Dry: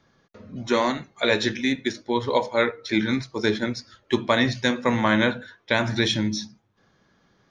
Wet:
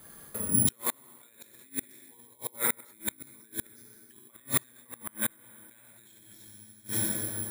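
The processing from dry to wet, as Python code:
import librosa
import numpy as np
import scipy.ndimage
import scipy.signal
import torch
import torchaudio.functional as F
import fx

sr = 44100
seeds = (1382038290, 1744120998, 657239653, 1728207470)

y = fx.rev_plate(x, sr, seeds[0], rt60_s=2.6, hf_ratio=0.75, predelay_ms=0, drr_db=-2.5)
y = fx.over_compress(y, sr, threshold_db=-25.0, ratio=-1.0)
y = fx.dynamic_eq(y, sr, hz=560.0, q=1.0, threshold_db=-39.0, ratio=4.0, max_db=-8)
y = fx.gate_flip(y, sr, shuts_db=-19.0, range_db=-34)
y = (np.kron(scipy.signal.resample_poly(y, 1, 4), np.eye(4)[0]) * 4)[:len(y)]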